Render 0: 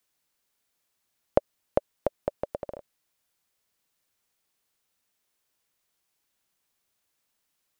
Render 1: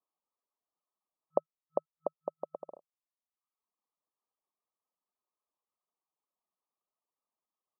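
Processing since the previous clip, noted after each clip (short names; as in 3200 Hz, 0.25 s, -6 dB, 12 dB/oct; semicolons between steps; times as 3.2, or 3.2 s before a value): tilt +3.5 dB/oct; reverb removal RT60 1 s; FFT band-pass 160–1300 Hz; gain -4 dB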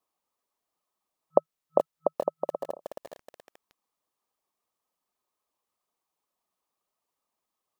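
lo-fi delay 0.425 s, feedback 35%, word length 8-bit, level -7.5 dB; gain +8.5 dB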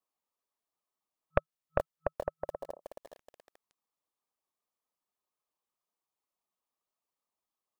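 tracing distortion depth 0.4 ms; gain -7.5 dB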